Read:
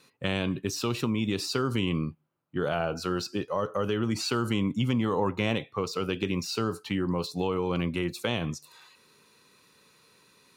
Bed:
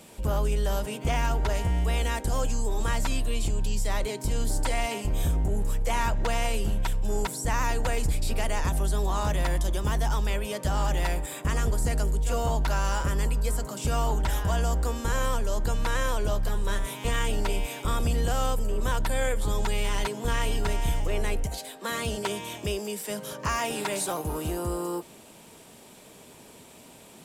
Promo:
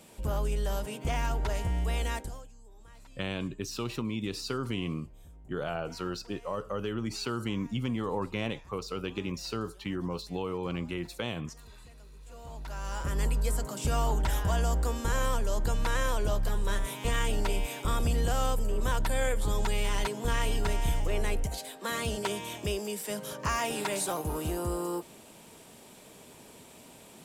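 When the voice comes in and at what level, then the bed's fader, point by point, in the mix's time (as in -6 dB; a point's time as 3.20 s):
2.95 s, -5.5 dB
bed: 2.17 s -4.5 dB
2.51 s -27 dB
12.09 s -27 dB
13.24 s -2 dB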